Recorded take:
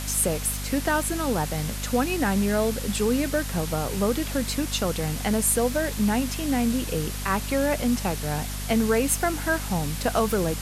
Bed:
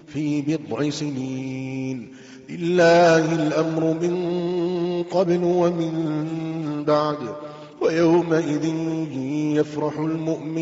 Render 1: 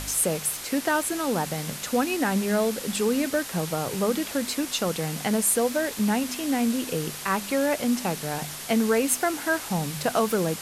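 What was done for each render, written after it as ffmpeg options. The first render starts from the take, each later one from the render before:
-af "bandreject=f=50:t=h:w=4,bandreject=f=100:t=h:w=4,bandreject=f=150:t=h:w=4,bandreject=f=200:t=h:w=4,bandreject=f=250:t=h:w=4"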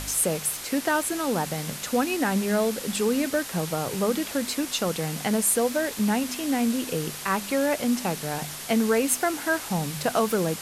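-af anull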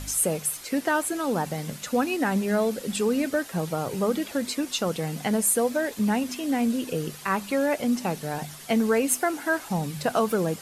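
-af "afftdn=nr=9:nf=-37"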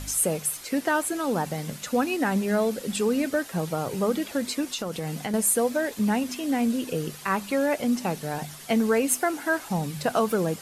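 -filter_complex "[0:a]asettb=1/sr,asplit=3[a][b][c];[a]atrim=end=4.734[d];[b]atrim=start=4.73:end=5.34,asetpts=PTS-STARTPTS,afade=t=in:d=0.004:c=qsin,afade=t=out:st=0.606:d=0.004:c=qsin,acompressor=threshold=-26dB:ratio=6:attack=3.2:release=140:knee=1:detection=peak[e];[c]atrim=start=5.336[f];[d][e]acrossfade=d=0.004:c1=hsin:c2=qsin[g];[g][f]acrossfade=d=0.004:c1=qsin:c2=hsin"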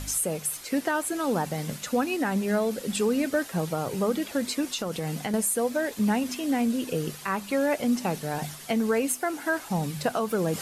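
-af "areverse,acompressor=mode=upward:threshold=-28dB:ratio=2.5,areverse,alimiter=limit=-16dB:level=0:latency=1:release=314"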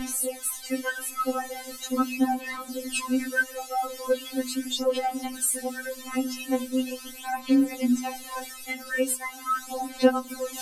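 -af "aphaser=in_gain=1:out_gain=1:delay=2.4:decay=0.69:speed=0.4:type=sinusoidal,afftfilt=real='re*3.46*eq(mod(b,12),0)':imag='im*3.46*eq(mod(b,12),0)':win_size=2048:overlap=0.75"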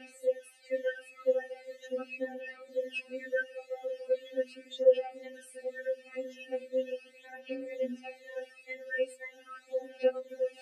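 -filter_complex "[0:a]afftfilt=real='re*pow(10,11/40*sin(2*PI*(1.1*log(max(b,1)*sr/1024/100)/log(2)-(-2)*(pts-256)/sr)))':imag='im*pow(10,11/40*sin(2*PI*(1.1*log(max(b,1)*sr/1024/100)/log(2)-(-2)*(pts-256)/sr)))':win_size=1024:overlap=0.75,asplit=3[a][b][c];[a]bandpass=f=530:t=q:w=8,volume=0dB[d];[b]bandpass=f=1.84k:t=q:w=8,volume=-6dB[e];[c]bandpass=f=2.48k:t=q:w=8,volume=-9dB[f];[d][e][f]amix=inputs=3:normalize=0"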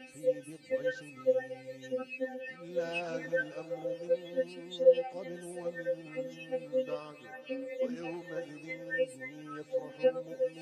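-filter_complex "[1:a]volume=-25dB[a];[0:a][a]amix=inputs=2:normalize=0"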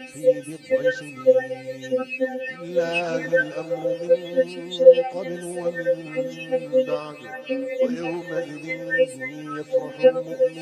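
-af "volume=12dB,alimiter=limit=-1dB:level=0:latency=1"

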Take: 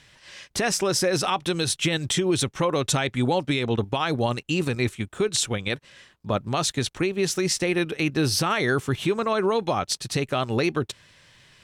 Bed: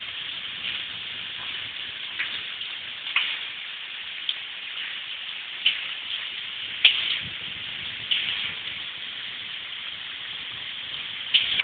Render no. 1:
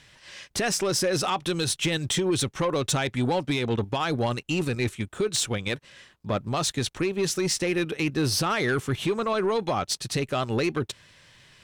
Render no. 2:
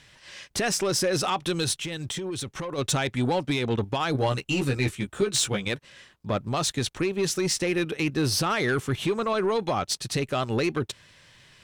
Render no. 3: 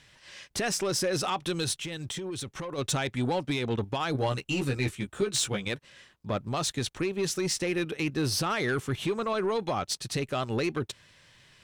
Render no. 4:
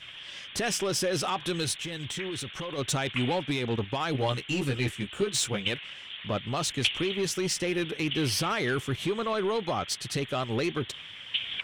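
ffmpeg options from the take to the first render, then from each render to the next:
-af "asoftclip=type=tanh:threshold=-17.5dB"
-filter_complex "[0:a]asplit=3[a][b][c];[a]afade=t=out:st=1.74:d=0.02[d];[b]acompressor=threshold=-29dB:ratio=10:attack=3.2:release=140:knee=1:detection=peak,afade=t=in:st=1.74:d=0.02,afade=t=out:st=2.77:d=0.02[e];[c]afade=t=in:st=2.77:d=0.02[f];[d][e][f]amix=inputs=3:normalize=0,asettb=1/sr,asplit=3[g][h][i];[g]atrim=end=4.134[j];[h]atrim=start=4.13:end=5.65,asetpts=PTS-STARTPTS,afade=t=in:d=0.004:c=qsin,afade=t=out:st=1.516:d=0.004:c=qsin,asplit=2[k][l];[l]adelay=15,volume=-3.5dB[m];[k][m]amix=inputs=2:normalize=0,atrim=end_sample=67032[n];[i]atrim=start=5.646[o];[j][n]acrossfade=d=0.004:c1=hsin:c2=qsin[p];[p][o]acrossfade=d=0.004:c1=qsin:c2=hsin"
-af "volume=-3.5dB"
-filter_complex "[1:a]volume=-10.5dB[a];[0:a][a]amix=inputs=2:normalize=0"

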